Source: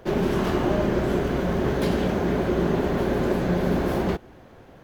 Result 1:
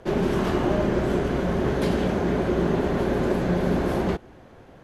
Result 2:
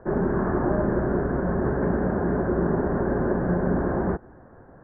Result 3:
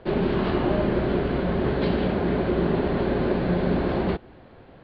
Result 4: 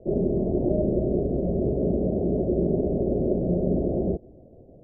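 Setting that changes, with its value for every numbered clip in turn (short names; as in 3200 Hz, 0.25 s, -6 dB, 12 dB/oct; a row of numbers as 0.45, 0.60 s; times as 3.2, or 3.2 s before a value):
Chebyshev low-pass, frequency: 12000, 1700, 4400, 650 Hz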